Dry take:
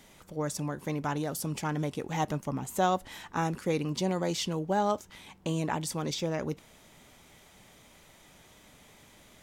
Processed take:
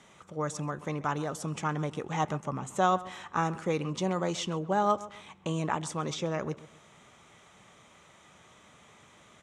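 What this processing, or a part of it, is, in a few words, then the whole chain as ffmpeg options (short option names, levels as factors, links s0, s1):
car door speaker: -filter_complex "[0:a]highpass=87,equalizer=f=270:t=q:w=4:g=-5,equalizer=f=1200:t=q:w=4:g=8,equalizer=f=4700:t=q:w=4:g=-9,lowpass=f=8300:w=0.5412,lowpass=f=8300:w=1.3066,asplit=2[s0][s1];[s1]adelay=131,lowpass=f=2200:p=1,volume=0.141,asplit=2[s2][s3];[s3]adelay=131,lowpass=f=2200:p=1,volume=0.33,asplit=2[s4][s5];[s5]adelay=131,lowpass=f=2200:p=1,volume=0.33[s6];[s0][s2][s4][s6]amix=inputs=4:normalize=0"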